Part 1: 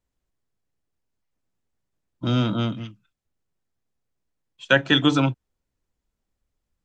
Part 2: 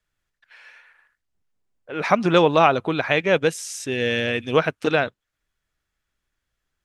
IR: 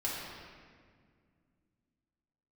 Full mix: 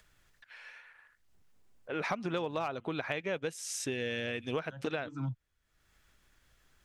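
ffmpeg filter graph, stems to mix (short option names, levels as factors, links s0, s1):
-filter_complex "[0:a]bass=f=250:g=11,treble=f=4000:g=-2,asplit=2[s0][s1];[s1]afreqshift=-1.8[s2];[s0][s2]amix=inputs=2:normalize=1,volume=0.299[s3];[1:a]acompressor=mode=upward:threshold=0.00355:ratio=2.5,volume=1.78,asoftclip=hard,volume=0.562,volume=0.668,asplit=2[s4][s5];[s5]apad=whole_len=301840[s6];[s3][s6]sidechaincompress=threshold=0.0158:ratio=16:attack=49:release=277[s7];[s7][s4]amix=inputs=2:normalize=0,acompressor=threshold=0.0251:ratio=6"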